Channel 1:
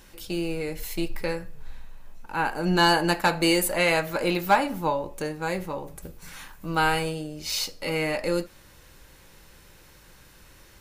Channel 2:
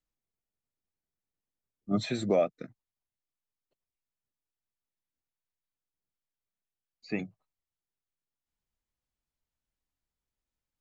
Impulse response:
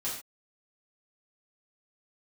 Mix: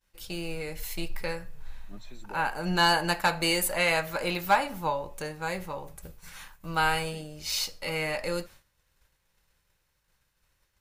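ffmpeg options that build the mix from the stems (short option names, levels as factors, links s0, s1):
-filter_complex "[0:a]agate=range=0.0224:threshold=0.0112:ratio=3:detection=peak,equalizer=f=300:w=1.1:g=-8.5,volume=0.841[s0];[1:a]highshelf=f=4400:g=8.5,volume=0.106[s1];[s0][s1]amix=inputs=2:normalize=0"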